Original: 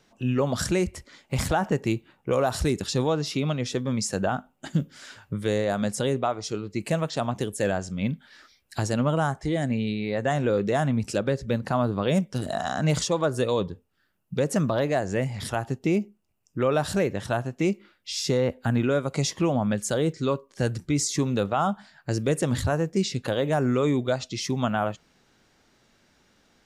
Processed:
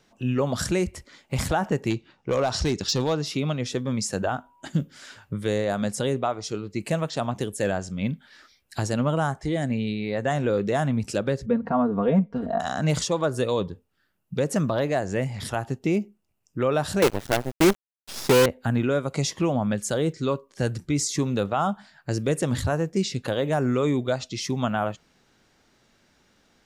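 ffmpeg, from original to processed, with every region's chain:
-filter_complex "[0:a]asettb=1/sr,asplit=3[s0][s1][s2];[s0]atrim=end=1.904[s3];[s1]atrim=start=1.9:end=3.17,asetpts=PTS-STARTPTS,afade=t=in:d=0.004:c=qsin,afade=t=out:st=1.266:d=0.004:c=qsin,lowpass=f=5500:t=q:w=2.7,volume=7.08,asoftclip=hard,volume=0.141[s4];[s2]atrim=start=3.166[s5];[s3][s4]acrossfade=d=0.004:c1=hsin:c2=qsin[s6];[s6][s5]acrossfade=d=0.004:c1=qsin:c2=hsin,asettb=1/sr,asplit=3[s7][s8][s9];[s7]atrim=end=4.224[s10];[s8]atrim=start=4.22:end=4.66,asetpts=PTS-STARTPTS,afade=t=in:d=0.004:c=qsin,afade=t=out:st=0.436:d=0.004:c=qsin,aeval=exprs='val(0)+0.00141*sin(2*PI*970*n/s)':c=same,equalizer=f=190:t=o:w=0.34:g=-14.5[s11];[s9]atrim=start=4.656[s12];[s10][s11]acrossfade=d=0.004:c1=hsin:c2=qsin[s13];[s13][s12]acrossfade=d=0.004:c1=qsin:c2=hsin,asettb=1/sr,asplit=3[s14][s15][s16];[s14]atrim=end=11.464[s17];[s15]atrim=start=11.46:end=12.6,asetpts=PTS-STARTPTS,afade=t=in:d=0.004:c=qsin,afade=t=out:st=1.136:d=0.004:c=qsin,lowpass=1300,aecho=1:1:4.3:0.88,atrim=end_sample=50274[s18];[s16]atrim=start=12.596[s19];[s17][s18]acrossfade=d=0.004:c1=hsin:c2=qsin[s20];[s20][s19]acrossfade=d=0.004:c1=qsin:c2=hsin,asettb=1/sr,asplit=3[s21][s22][s23];[s21]atrim=end=17.024[s24];[s22]atrim=start=17.02:end=18.46,asetpts=PTS-STARTPTS,afade=t=in:d=0.004:c=qsin,afade=t=out:st=1.436:d=0.004:c=qsin,equalizer=f=410:w=1:g=7,aeval=exprs='sgn(val(0))*max(abs(val(0))-0.00668,0)':c=same,acrusher=bits=4:dc=4:mix=0:aa=0.000001[s25];[s23]atrim=start=18.456[s26];[s24][s25]acrossfade=d=0.004:c1=hsin:c2=qsin[s27];[s27][s26]acrossfade=d=0.004:c1=qsin:c2=hsin"

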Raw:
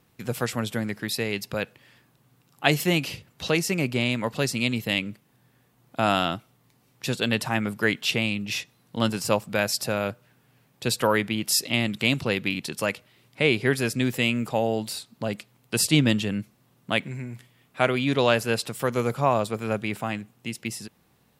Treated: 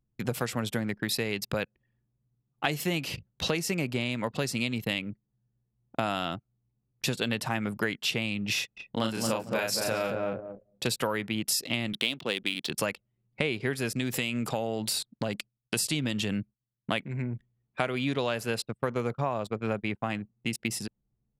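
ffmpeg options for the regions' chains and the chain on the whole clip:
-filter_complex "[0:a]asettb=1/sr,asplit=3[s0][s1][s2];[s0]atrim=end=8.544[s3];[s1]atrim=start=8.54:end=10.87,asetpts=PTS-STARTPTS,afade=t=in:d=0.004:c=qsin,afade=t=out:st=2.326:d=0.004:c=qsin,equalizer=f=110:w=0.8:g=-6,asplit=2[s4][s5];[s5]adelay=36,volume=0.708[s6];[s4][s6]amix=inputs=2:normalize=0,atrim=end_sample=102753,asplit=2[s7][s8];[s8]adelay=225,lowpass=f=830:p=1,volume=0.708,asplit=2[s9][s10];[s10]adelay=225,lowpass=f=830:p=1,volume=0.31,asplit=2[s11][s12];[s12]adelay=225,lowpass=f=830:p=1,volume=0.31,asplit=2[s13][s14];[s14]adelay=225,lowpass=f=830:p=1,volume=0.31[s15];[s7][s9][s11][s13][s15]amix=inputs=5:normalize=0,atrim=end_sample=102753[s16];[s2]atrim=start=10.866[s17];[s3][s16]acrossfade=d=0.004:c1=hsin:c2=qsin[s18];[s18][s17]acrossfade=d=0.004:c1=qsin:c2=hsin,asettb=1/sr,asplit=3[s19][s20][s21];[s19]atrim=end=11.934[s22];[s20]atrim=start=11.93:end=12.7,asetpts=PTS-STARTPTS,afade=t=in:d=0.004:c=qsin,afade=t=out:st=0.766:d=0.004:c=qsin,highpass=240,equalizer=f=3400:t=o:w=0.4:g=11.5,adynamicsmooth=sensitivity=4:basefreq=2800[s23];[s21]atrim=start=12.696[s24];[s22][s23]acrossfade=d=0.004:c1=hsin:c2=qsin[s25];[s25][s24]acrossfade=d=0.004:c1=qsin:c2=hsin,asettb=1/sr,asplit=3[s26][s27][s28];[s26]atrim=end=13.934[s29];[s27]atrim=start=13.93:end=16.92,asetpts=PTS-STARTPTS,afade=t=in:d=0.004:c=qsin,afade=t=out:st=2.986:d=0.004:c=qsin,equalizer=f=7900:t=o:w=2.9:g=4.5,acompressor=threshold=0.0447:ratio=2:attack=3.2:release=140:knee=1:detection=peak,agate=range=0.0224:threshold=0.00224:ratio=3:release=100:detection=peak[s30];[s28]atrim=start=16.916[s31];[s29][s30]acrossfade=d=0.004:c1=hsin:c2=qsin[s32];[s32][s31]acrossfade=d=0.004:c1=qsin:c2=hsin,asettb=1/sr,asplit=3[s33][s34][s35];[s33]atrim=end=18.654[s36];[s34]atrim=start=18.65:end=20.1,asetpts=PTS-STARTPTS,afade=t=in:d=0.004:c=qsin,afade=t=out:st=1.446:d=0.004:c=qsin,agate=range=0.0224:threshold=0.0282:ratio=3:release=100:detection=peak,highshelf=f=6200:g=-8[s37];[s35]atrim=start=20.096[s38];[s36][s37]acrossfade=d=0.004:c1=hsin:c2=qsin[s39];[s39][s38]acrossfade=d=0.004:c1=qsin:c2=hsin,anlmdn=0.398,acompressor=threshold=0.0316:ratio=6,volume=1.58"

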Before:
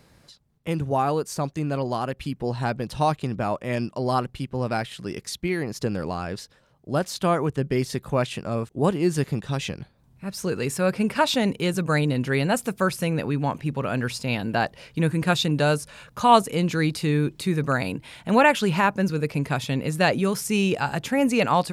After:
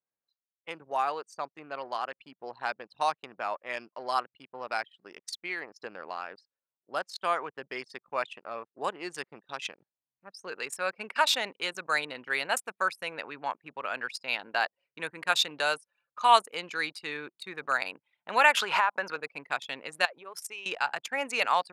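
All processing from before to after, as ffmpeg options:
-filter_complex "[0:a]asettb=1/sr,asplit=3[s0][s1][s2];[s0]atrim=end=18.574[s3];[s1]atrim=start=18.57:end=19.16,asetpts=PTS-STARTPTS,afade=t=in:d=0.004:c=qsin,afade=t=out:st=0.586:d=0.004:c=qsin,equalizer=f=970:t=o:w=2.5:g=12.5,acompressor=threshold=0.158:ratio=16:attack=3.2:release=140:knee=1:detection=peak[s4];[s2]atrim=start=19.156[s5];[s3][s4]acrossfade=d=0.004:c1=hsin:c2=qsin[s6];[s6][s5]acrossfade=d=0.004:c1=qsin:c2=hsin,asettb=1/sr,asplit=3[s7][s8][s9];[s7]atrim=end=20.054[s10];[s8]atrim=start=20.05:end=20.66,asetpts=PTS-STARTPTS,afade=t=in:d=0.004:c=qsin,afade=t=out:st=0.606:d=0.004:c=qsin,equalizer=f=220:w=2:g=-12.5,acompressor=threshold=0.0447:ratio=16:attack=3.2:release=140:knee=1:detection=peak[s11];[s9]atrim=start=20.656[s12];[s10][s11]acrossfade=d=0.004:c1=hsin:c2=qsin[s13];[s13][s12]acrossfade=d=0.004:c1=qsin:c2=hsin,anlmdn=63.1,highpass=980"

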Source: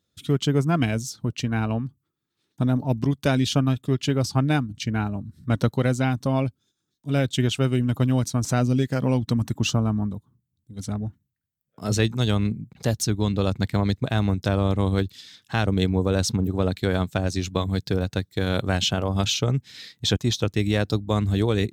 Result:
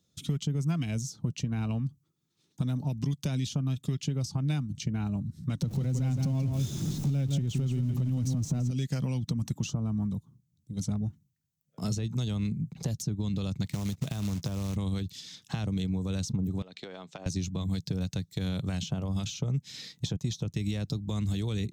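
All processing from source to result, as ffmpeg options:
-filter_complex "[0:a]asettb=1/sr,asplit=3[s0][s1][s2];[s0]atrim=end=5.624[s3];[s1]atrim=start=5.62:end=8.71,asetpts=PTS-STARTPTS,afade=t=in:d=0.004:c=qsin,afade=t=out:st=3.086:d=0.004:c=qsin,aeval=exprs='val(0)+0.5*0.0335*sgn(val(0))':c=same,tiltshelf=f=660:g=9.5,aecho=1:1:168:0.355,atrim=end_sample=136269[s4];[s2]atrim=start=8.706[s5];[s3][s4]acrossfade=d=0.004:c1=hsin:c2=qsin[s6];[s6][s5]acrossfade=d=0.004:c1=qsin:c2=hsin,asettb=1/sr,asplit=3[s7][s8][s9];[s7]atrim=end=13.664[s10];[s8]atrim=start=13.66:end=14.76,asetpts=PTS-STARTPTS,afade=t=in:d=0.004:c=qsin,afade=t=out:st=1.096:d=0.004:c=qsin,acompressor=threshold=0.0562:ratio=12:attack=3.2:release=140:knee=1:detection=peak,acrusher=bits=3:mode=log:mix=0:aa=0.000001[s11];[s9]atrim=start=14.756[s12];[s10][s11]acrossfade=d=0.004:c1=hsin:c2=qsin[s13];[s13][s12]acrossfade=d=0.004:c1=qsin:c2=hsin,asettb=1/sr,asplit=3[s14][s15][s16];[s14]atrim=end=16.624[s17];[s15]atrim=start=16.62:end=17.26,asetpts=PTS-STARTPTS,afade=t=in:d=0.004:c=qsin,afade=t=out:st=0.636:d=0.004:c=qsin,highpass=440,lowpass=3900,acompressor=threshold=0.0178:ratio=16:attack=3.2:release=140:knee=1:detection=peak[s18];[s16]atrim=start=17.256[s19];[s17][s18]acrossfade=d=0.004:c1=hsin:c2=qsin[s20];[s20][s19]acrossfade=d=0.004:c1=qsin:c2=hsin,alimiter=limit=0.141:level=0:latency=1:release=150,equalizer=f=160:t=o:w=0.67:g=9,equalizer=f=1600:t=o:w=0.67:g=-6,equalizer=f=6300:t=o:w=0.67:g=7,acrossover=split=220|1500[s21][s22][s23];[s21]acompressor=threshold=0.0355:ratio=4[s24];[s22]acompressor=threshold=0.00891:ratio=4[s25];[s23]acompressor=threshold=0.00891:ratio=4[s26];[s24][s25][s26]amix=inputs=3:normalize=0"

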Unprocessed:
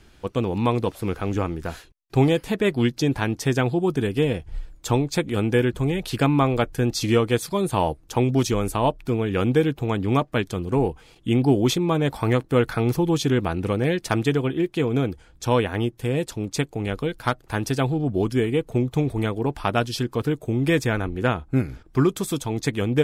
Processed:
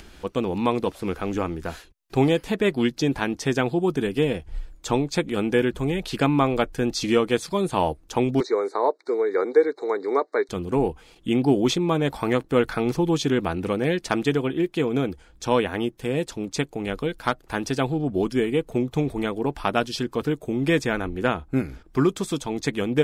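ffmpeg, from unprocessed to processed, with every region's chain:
-filter_complex "[0:a]asettb=1/sr,asplit=3[s0][s1][s2];[s0]atrim=end=8.404[s3];[s1]atrim=start=8.4:end=10.49,asetpts=PTS-STARTPTS,afade=t=in:d=0.004:c=qsin,afade=t=out:st=2.086:d=0.004:c=qsin,acrossover=split=3100[s4][s5];[s5]acompressor=threshold=0.00316:ratio=4:attack=1:release=60[s6];[s4][s6]amix=inputs=2:normalize=0,asuperstop=centerf=2900:order=20:qfactor=2.1,highpass=f=380:w=0.5412,highpass=f=380:w=1.3066,equalizer=f=420:t=q:w=4:g=9,equalizer=f=670:t=q:w=4:g=-3,equalizer=f=4100:t=q:w=4:g=9,lowpass=f=8000:w=0.5412,lowpass=f=8000:w=1.3066[s7];[s2]atrim=start=10.486[s8];[s3][s7]acrossfade=d=0.004:c1=hsin:c2=qsin[s9];[s9][s8]acrossfade=d=0.004:c1=qsin:c2=hsin,acrossover=split=8600[s10][s11];[s11]acompressor=threshold=0.00251:ratio=4:attack=1:release=60[s12];[s10][s12]amix=inputs=2:normalize=0,equalizer=f=110:w=3.7:g=-14.5,acompressor=mode=upward:threshold=0.0126:ratio=2.5"

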